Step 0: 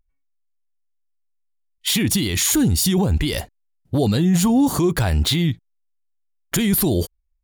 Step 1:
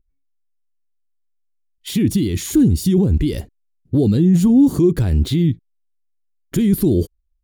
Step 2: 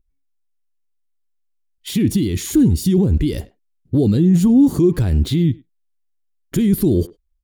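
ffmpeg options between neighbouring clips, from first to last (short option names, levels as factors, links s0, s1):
-af "lowshelf=f=520:t=q:w=1.5:g=11.5,volume=0.355"
-filter_complex "[0:a]asplit=2[s0][s1];[s1]adelay=100,highpass=300,lowpass=3400,asoftclip=type=hard:threshold=0.188,volume=0.1[s2];[s0][s2]amix=inputs=2:normalize=0"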